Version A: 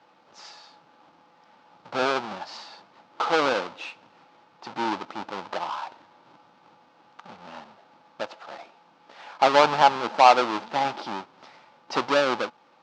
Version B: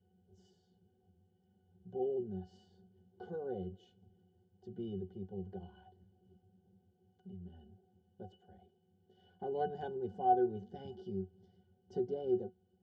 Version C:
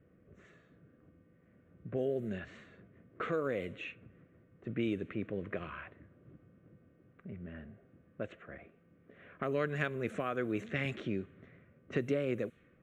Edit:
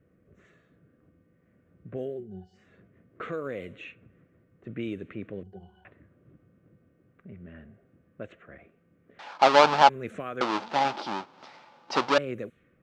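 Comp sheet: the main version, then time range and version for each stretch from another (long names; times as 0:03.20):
C
0:02.15–0:02.65: punch in from B, crossfade 0.24 s
0:05.43–0:05.85: punch in from B
0:09.19–0:09.89: punch in from A
0:10.41–0:12.18: punch in from A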